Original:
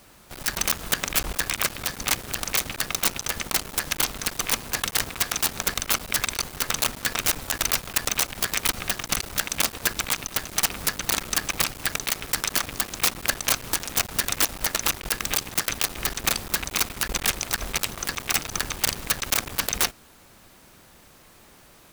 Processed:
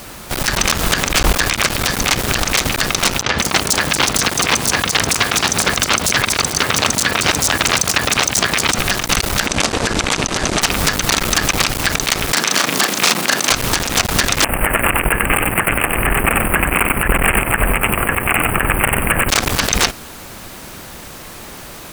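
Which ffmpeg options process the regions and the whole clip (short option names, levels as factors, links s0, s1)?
-filter_complex "[0:a]asettb=1/sr,asplit=3[s0][s1][s2];[s0]atrim=end=3.224[s3];[s1]atrim=start=3.22:end=8.79,asetpts=PTS-STARTPTS,afade=t=in:d=0.004:c=qsin,afade=t=out:st=5.566:d=0.004:c=qsin,highpass=72,equalizer=f=14000:w=2.7:g=-10.5,acrossover=split=5100[s4][s5];[s5]adelay=160[s6];[s4][s6]amix=inputs=2:normalize=0,atrim=end_sample=245637[s7];[s2]atrim=start=8.786[s8];[s3][s7]acrossfade=d=0.004:c1=hsin:c2=qsin[s9];[s9][s8]acrossfade=d=0.004:c1=qsin:c2=hsin,asettb=1/sr,asplit=3[s10][s11][s12];[s10]atrim=end=9.464[s13];[s11]atrim=start=9.46:end=10.62,asetpts=PTS-STARTPTS,afade=t=in:d=0.004:c=qsin,afade=t=out:st=1.156:d=0.004:c=qsin,lowpass=f=8500:w=0.5412,lowpass=f=8500:w=1.3066,equalizer=f=390:t=o:w=2.7:g=5.5,acompressor=threshold=0.0447:ratio=5:attack=3.2:release=140:knee=1:detection=peak[s14];[s12]atrim=start=10.616[s15];[s13][s14]acrossfade=d=0.004:c1=hsin:c2=qsin[s16];[s16][s15]acrossfade=d=0.004:c1=qsin:c2=hsin,asettb=1/sr,asplit=3[s17][s18][s19];[s17]atrim=end=12.324[s20];[s18]atrim=start=12.32:end=13.51,asetpts=PTS-STARTPTS,afade=t=in:d=0.004:c=qsin,afade=t=out:st=1.186:d=0.004:c=qsin,highpass=f=160:w=0.5412,highpass=f=160:w=1.3066,asplit=2[s21][s22];[s22]adelay=36,volume=0.501[s23];[s21][s23]amix=inputs=2:normalize=0,atrim=end_sample=52479[s24];[s19]atrim=start=13.506[s25];[s20][s24]acrossfade=d=0.004:c1=hsin:c2=qsin[s26];[s26][s25]acrossfade=d=0.004:c1=qsin:c2=hsin,asettb=1/sr,asplit=3[s27][s28][s29];[s27]atrim=end=14.444[s30];[s28]atrim=start=14.44:end=19.29,asetpts=PTS-STARTPTS,afade=t=in:d=0.004:c=qsin,afade=t=out:st=4.846:d=0.004:c=qsin,asuperstop=centerf=5000:order=12:qfactor=0.87,aecho=1:1:93:0.422,atrim=end_sample=213885[s31];[s29]atrim=start=19.286[s32];[s30][s31]acrossfade=d=0.004:c1=hsin:c2=qsin[s33];[s33][s32]acrossfade=d=0.004:c1=qsin:c2=hsin,acrossover=split=8000[s34][s35];[s35]acompressor=threshold=0.0158:ratio=4:attack=1:release=60[s36];[s34][s36]amix=inputs=2:normalize=0,alimiter=level_in=9.44:limit=0.891:release=50:level=0:latency=1,volume=0.891"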